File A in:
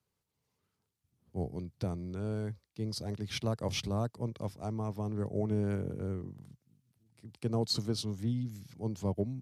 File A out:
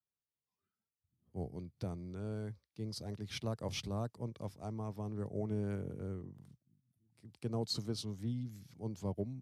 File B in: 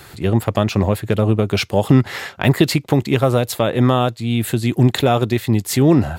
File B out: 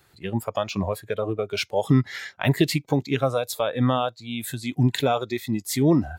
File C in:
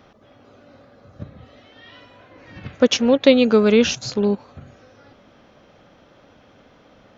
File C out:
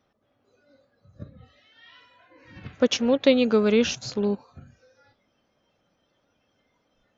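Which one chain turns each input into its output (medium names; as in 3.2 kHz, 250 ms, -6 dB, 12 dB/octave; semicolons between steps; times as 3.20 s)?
spectral noise reduction 14 dB; trim -5.5 dB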